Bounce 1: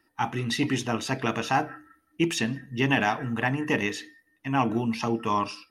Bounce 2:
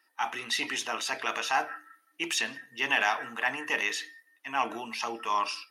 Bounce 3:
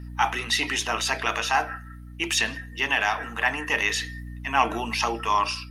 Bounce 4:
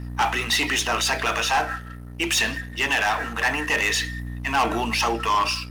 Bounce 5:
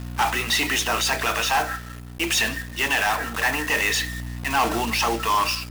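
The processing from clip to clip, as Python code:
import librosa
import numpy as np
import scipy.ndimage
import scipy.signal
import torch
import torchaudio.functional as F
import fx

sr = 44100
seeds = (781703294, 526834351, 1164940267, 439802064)

y1 = scipy.signal.sosfilt(scipy.signal.bessel(2, 1000.0, 'highpass', norm='mag', fs=sr, output='sos'), x)
y1 = fx.transient(y1, sr, attack_db=-2, sustain_db=3)
y1 = F.gain(torch.from_numpy(y1), 2.0).numpy()
y2 = fx.add_hum(y1, sr, base_hz=60, snr_db=14)
y2 = fx.rider(y2, sr, range_db=5, speed_s=0.5)
y2 = F.gain(torch.from_numpy(y2), 5.5).numpy()
y3 = fx.leveller(y2, sr, passes=3)
y3 = F.gain(torch.from_numpy(y3), -6.0).numpy()
y4 = fx.block_float(y3, sr, bits=3)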